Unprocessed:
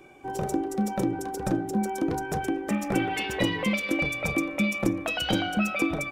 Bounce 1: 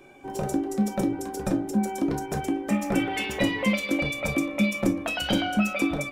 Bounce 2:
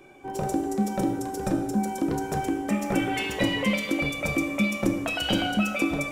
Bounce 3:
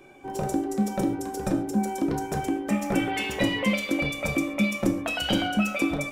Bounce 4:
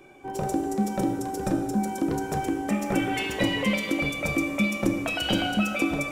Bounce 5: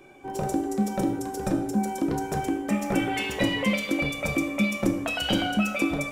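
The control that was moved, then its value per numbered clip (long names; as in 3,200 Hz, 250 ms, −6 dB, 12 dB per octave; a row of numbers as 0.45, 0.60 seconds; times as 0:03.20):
reverb whose tail is shaped and stops, gate: 80, 360, 160, 530, 240 milliseconds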